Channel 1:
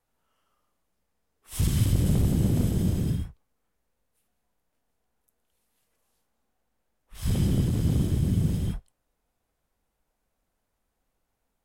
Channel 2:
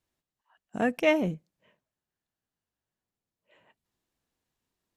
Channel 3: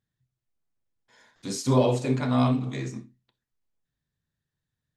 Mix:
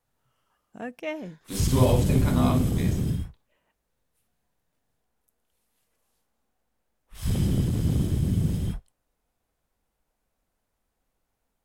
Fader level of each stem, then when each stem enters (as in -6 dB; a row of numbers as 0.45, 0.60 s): 0.0, -9.5, -1.5 dB; 0.00, 0.00, 0.05 s